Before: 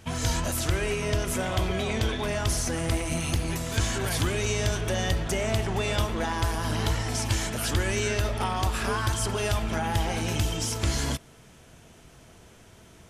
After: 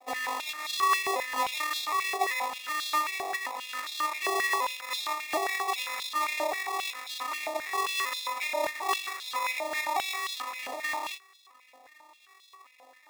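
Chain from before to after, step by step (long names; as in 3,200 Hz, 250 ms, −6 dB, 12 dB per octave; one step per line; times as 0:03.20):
vocoder with an arpeggio as carrier minor triad, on C4, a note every 383 ms
decimation without filtering 29×
high-pass on a step sequencer 7.5 Hz 700–3,700 Hz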